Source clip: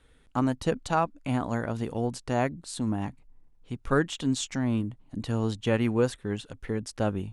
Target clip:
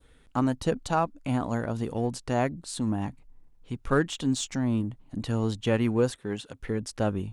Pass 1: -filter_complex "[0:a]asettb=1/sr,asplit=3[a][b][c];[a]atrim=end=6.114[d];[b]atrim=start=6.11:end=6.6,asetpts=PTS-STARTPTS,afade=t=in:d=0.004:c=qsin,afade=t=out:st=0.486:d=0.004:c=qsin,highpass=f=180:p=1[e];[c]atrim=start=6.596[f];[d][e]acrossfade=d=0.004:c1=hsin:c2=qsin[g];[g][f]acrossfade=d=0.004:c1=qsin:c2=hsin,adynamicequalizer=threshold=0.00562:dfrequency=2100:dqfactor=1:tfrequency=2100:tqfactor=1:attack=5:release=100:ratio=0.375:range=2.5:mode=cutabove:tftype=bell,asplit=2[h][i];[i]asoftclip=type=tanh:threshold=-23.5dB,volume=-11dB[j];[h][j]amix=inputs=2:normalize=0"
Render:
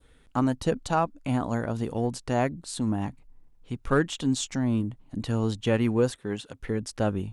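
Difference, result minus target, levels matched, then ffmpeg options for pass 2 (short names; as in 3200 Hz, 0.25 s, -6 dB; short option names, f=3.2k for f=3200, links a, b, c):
soft clip: distortion -7 dB
-filter_complex "[0:a]asettb=1/sr,asplit=3[a][b][c];[a]atrim=end=6.114[d];[b]atrim=start=6.11:end=6.6,asetpts=PTS-STARTPTS,afade=t=in:d=0.004:c=qsin,afade=t=out:st=0.486:d=0.004:c=qsin,highpass=f=180:p=1[e];[c]atrim=start=6.596[f];[d][e]acrossfade=d=0.004:c1=hsin:c2=qsin[g];[g][f]acrossfade=d=0.004:c1=qsin:c2=hsin,adynamicequalizer=threshold=0.00562:dfrequency=2100:dqfactor=1:tfrequency=2100:tqfactor=1:attack=5:release=100:ratio=0.375:range=2.5:mode=cutabove:tftype=bell,asplit=2[h][i];[i]asoftclip=type=tanh:threshold=-35dB,volume=-11dB[j];[h][j]amix=inputs=2:normalize=0"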